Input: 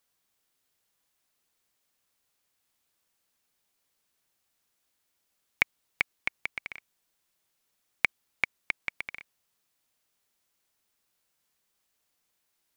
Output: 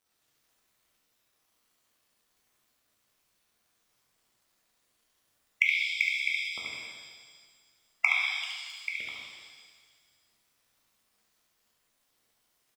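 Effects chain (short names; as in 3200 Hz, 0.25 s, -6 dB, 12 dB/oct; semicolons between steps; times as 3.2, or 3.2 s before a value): random spectral dropouts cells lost 75%; HPF 84 Hz; notch 1600 Hz, Q 6.2; crackle 330/s -64 dBFS; on a send: echo 71 ms -4.5 dB; on the sum: shimmer reverb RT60 1.6 s, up +7 st, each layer -8 dB, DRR -2.5 dB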